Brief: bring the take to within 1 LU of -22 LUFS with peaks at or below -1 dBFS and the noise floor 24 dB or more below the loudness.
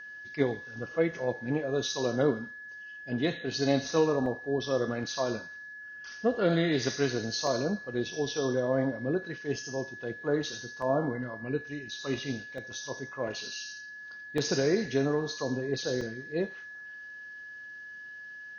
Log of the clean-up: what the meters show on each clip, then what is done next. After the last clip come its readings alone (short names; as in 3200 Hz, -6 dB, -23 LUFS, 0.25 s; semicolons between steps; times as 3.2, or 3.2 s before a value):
dropouts 6; longest dropout 2.4 ms; steady tone 1700 Hz; tone level -42 dBFS; loudness -31.0 LUFS; peak -12.5 dBFS; loudness target -22.0 LUFS
-> interpolate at 4.26/7.47/10.82/12.58/14.38/16.01, 2.4 ms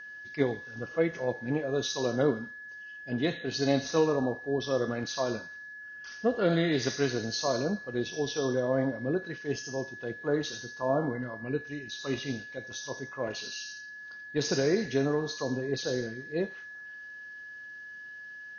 dropouts 0; steady tone 1700 Hz; tone level -42 dBFS
-> notch 1700 Hz, Q 30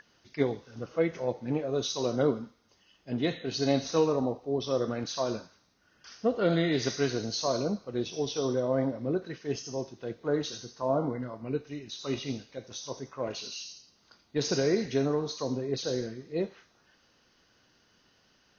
steady tone none; loudness -31.0 LUFS; peak -13.0 dBFS; loudness target -22.0 LUFS
-> gain +9 dB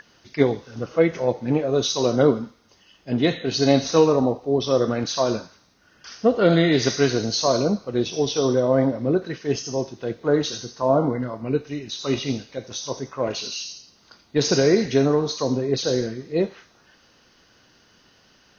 loudness -22.0 LUFS; peak -4.0 dBFS; noise floor -58 dBFS